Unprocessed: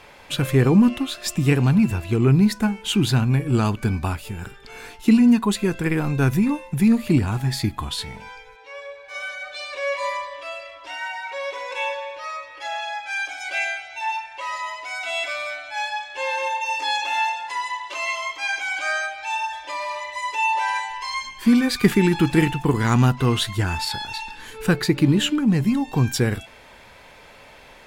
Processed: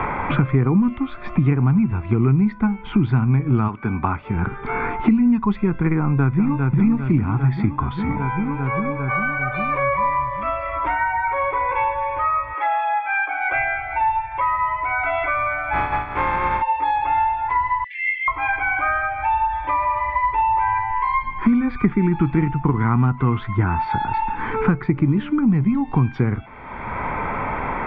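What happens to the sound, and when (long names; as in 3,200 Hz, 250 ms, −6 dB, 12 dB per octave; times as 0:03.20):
0:03.67–0:04.34: high-pass filter 510 Hz → 210 Hz 6 dB per octave
0:05.98–0:06.61: delay throw 400 ms, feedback 65%, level −5.5 dB
0:12.53–0:13.52: Bessel high-pass filter 430 Hz, order 6
0:15.72–0:16.61: compressing power law on the bin magnitudes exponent 0.38
0:17.84–0:18.28: linear-phase brick-wall high-pass 1,600 Hz
whole clip: inverse Chebyshev low-pass filter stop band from 9,500 Hz, stop band 80 dB; comb filter 0.9 ms, depth 55%; multiband upward and downward compressor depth 100%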